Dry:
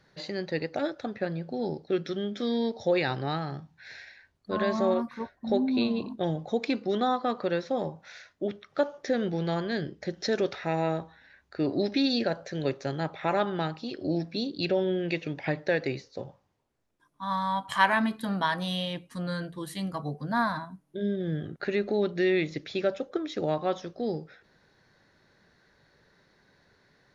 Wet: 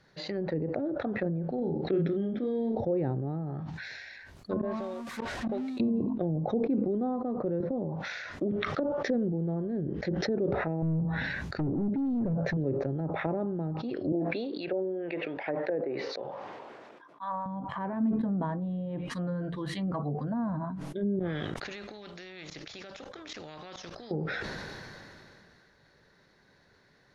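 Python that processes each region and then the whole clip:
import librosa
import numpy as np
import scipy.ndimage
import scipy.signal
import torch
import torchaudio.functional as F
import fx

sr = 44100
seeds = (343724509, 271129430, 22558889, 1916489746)

y = fx.chain(x, sr, fx.peak_eq(hz=2900.0, db=14.5, octaves=2.5),
    fx.doubler(ms=36.0, db=-4.5), at=(1.58, 2.81))
y = fx.chain(y, sr, fx.zero_step(step_db=-32.5),
    fx.gate_flip(shuts_db=-26.0, range_db=-26), at=(4.61, 5.8))
y = fx.chain(y, sr, fx.peak_eq(hz=640.0, db=-2.5, octaves=2.6),
    fx.band_squash(depth_pct=70), at=(7.6, 8.95))
y = fx.chain(y, sr, fx.peak_eq(hz=150.0, db=14.5, octaves=1.5),
    fx.clip_hard(threshold_db=-26.5), at=(10.82, 12.57))
y = fx.chain(y, sr, fx.bandpass_edges(low_hz=440.0, high_hz=3600.0),
    fx.high_shelf(hz=2500.0, db=-10.5), at=(14.12, 17.46))
y = fx.chain(y, sr, fx.high_shelf(hz=6900.0, db=-7.0),
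    fx.level_steps(step_db=21),
    fx.spectral_comp(ratio=2.0), at=(21.19, 24.11))
y = fx.env_lowpass_down(y, sr, base_hz=400.0, full_db=-27.0)
y = fx.sustainer(y, sr, db_per_s=21.0)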